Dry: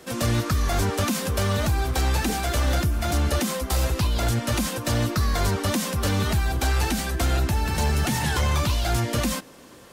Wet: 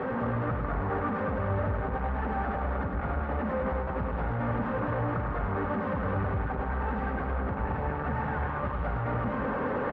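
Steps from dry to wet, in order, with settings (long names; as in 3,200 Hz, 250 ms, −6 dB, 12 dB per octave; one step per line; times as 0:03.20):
sign of each sample alone
low-pass filter 1,500 Hz 24 dB per octave
low-shelf EQ 390 Hz −5.5 dB
notch comb filter 340 Hz
on a send: loudspeakers that aren't time-aligned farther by 35 metres −5 dB, 73 metres −5 dB
on the sum: level −3 dB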